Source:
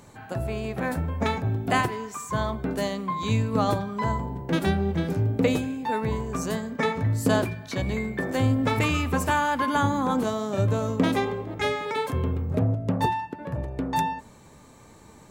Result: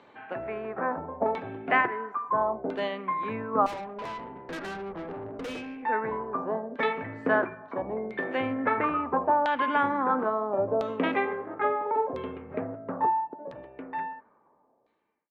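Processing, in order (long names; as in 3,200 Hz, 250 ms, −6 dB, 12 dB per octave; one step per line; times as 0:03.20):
fade-out on the ending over 3.19 s
three-way crossover with the lows and the highs turned down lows −23 dB, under 250 Hz, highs −15 dB, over 2,700 Hz
auto-filter low-pass saw down 0.74 Hz 630–3,800 Hz
0:03.66–0:05.83: tube saturation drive 32 dB, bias 0.35
level −1.5 dB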